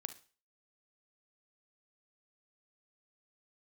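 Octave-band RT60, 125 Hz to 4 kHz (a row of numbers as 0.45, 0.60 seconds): 0.35, 0.35, 0.40, 0.40, 0.40, 0.40 seconds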